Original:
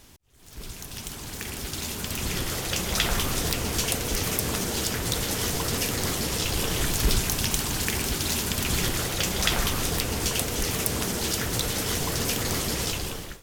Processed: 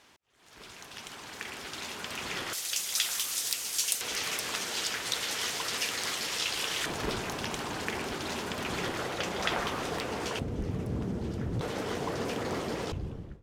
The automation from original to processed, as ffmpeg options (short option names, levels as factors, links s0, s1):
-af "asetnsamples=n=441:p=0,asendcmd='2.53 bandpass f 7800;4.01 bandpass f 2500;6.86 bandpass f 790;10.39 bandpass f 140;11.61 bandpass f 560;12.92 bandpass f 110',bandpass=f=1400:t=q:w=0.57:csg=0"